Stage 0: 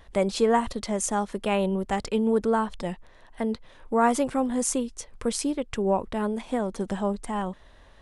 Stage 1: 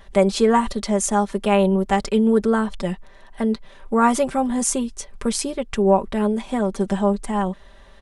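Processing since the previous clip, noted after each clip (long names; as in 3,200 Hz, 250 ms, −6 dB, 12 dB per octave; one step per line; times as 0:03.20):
comb filter 5.1 ms, depth 60%
level +4 dB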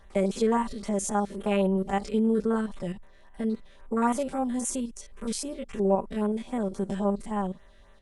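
spectrum averaged block by block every 50 ms
auto-filter notch sine 3.7 Hz 820–5,100 Hz
level −6.5 dB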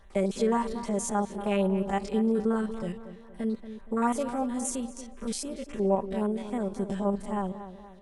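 tape delay 234 ms, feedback 48%, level −10.5 dB, low-pass 2,500 Hz
level −1.5 dB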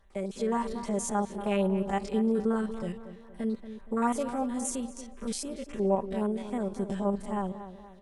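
automatic gain control gain up to 7 dB
level −8 dB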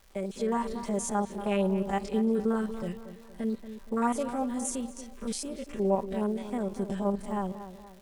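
surface crackle 400 per second −47 dBFS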